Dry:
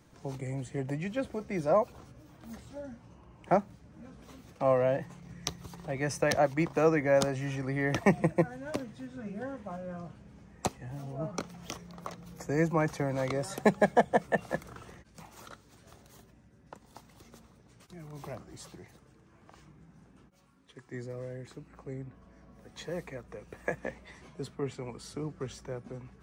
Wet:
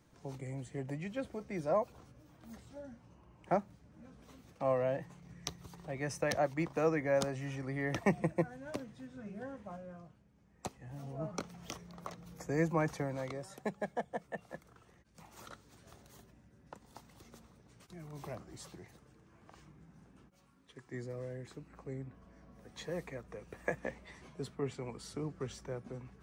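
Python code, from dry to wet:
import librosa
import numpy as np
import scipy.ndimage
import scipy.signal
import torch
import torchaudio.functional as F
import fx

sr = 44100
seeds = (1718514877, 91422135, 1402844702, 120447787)

y = fx.gain(x, sr, db=fx.line((9.73, -6.0), (10.32, -16.0), (11.05, -4.0), (12.94, -4.0), (13.6, -14.0), (14.9, -14.0), (15.4, -2.5)))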